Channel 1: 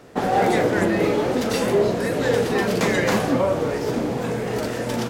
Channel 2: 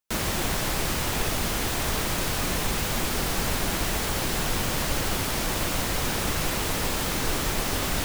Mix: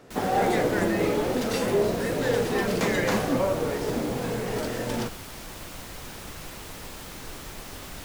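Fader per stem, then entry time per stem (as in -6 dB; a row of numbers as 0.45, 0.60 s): -4.5, -13.0 dB; 0.00, 0.00 s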